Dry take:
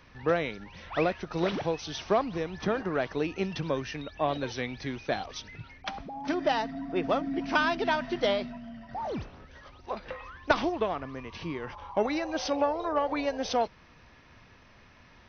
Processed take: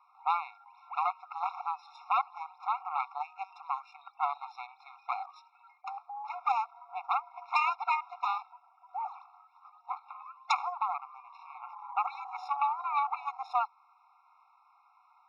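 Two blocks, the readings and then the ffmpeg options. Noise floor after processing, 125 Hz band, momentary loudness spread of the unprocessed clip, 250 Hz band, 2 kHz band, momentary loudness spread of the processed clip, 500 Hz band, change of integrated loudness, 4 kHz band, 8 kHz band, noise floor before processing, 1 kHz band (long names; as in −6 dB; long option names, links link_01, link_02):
−65 dBFS, below −40 dB, 12 LU, below −40 dB, −7.5 dB, 16 LU, −21.0 dB, −3.5 dB, −11.5 dB, can't be measured, −56 dBFS, +2.0 dB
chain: -af "highshelf=frequency=1900:width_type=q:width=1.5:gain=-12.5,aeval=exprs='0.398*(cos(1*acos(clip(val(0)/0.398,-1,1)))-cos(1*PI/2))+0.0112*(cos(2*acos(clip(val(0)/0.398,-1,1)))-cos(2*PI/2))+0.126*(cos(6*acos(clip(val(0)/0.398,-1,1)))-cos(6*PI/2))':channel_layout=same,afftfilt=real='re*eq(mod(floor(b*sr/1024/710),2),1)':imag='im*eq(mod(floor(b*sr/1024/710),2),1)':win_size=1024:overlap=0.75,volume=-2.5dB"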